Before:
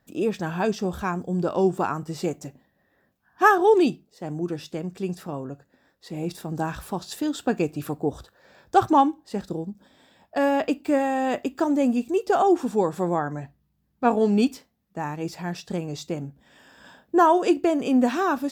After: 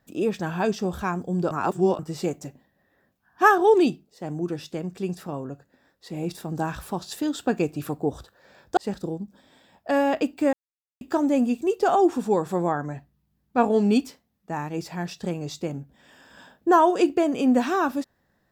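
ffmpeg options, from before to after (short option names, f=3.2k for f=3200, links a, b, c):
-filter_complex "[0:a]asplit=6[a][b][c][d][e][f];[a]atrim=end=1.512[g];[b]atrim=start=1.508:end=1.992,asetpts=PTS-STARTPTS,areverse[h];[c]atrim=start=1.988:end=8.772[i];[d]atrim=start=9.238:end=11,asetpts=PTS-STARTPTS,afade=t=out:st=1.758:d=0.004:c=hsin[j];[e]atrim=start=11:end=11.48,asetpts=PTS-STARTPTS,volume=0[k];[f]atrim=start=11.48,asetpts=PTS-STARTPTS,afade=t=in:d=0.004:c=hsin[l];[g][h]acrossfade=d=0.004:c1=hsin:c2=hsin[m];[m][i]acrossfade=d=0.004:c1=hsin:c2=hsin[n];[j][k][l]concat=n=3:v=0:a=1[o];[n][o]acrossfade=d=0.004:c1=hsin:c2=hsin"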